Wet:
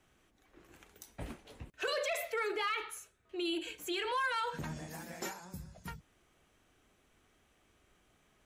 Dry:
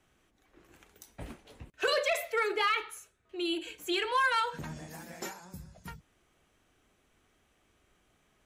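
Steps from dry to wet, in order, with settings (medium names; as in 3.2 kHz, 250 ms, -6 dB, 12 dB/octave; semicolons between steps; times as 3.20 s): peak limiter -27.5 dBFS, peak gain reduction 7 dB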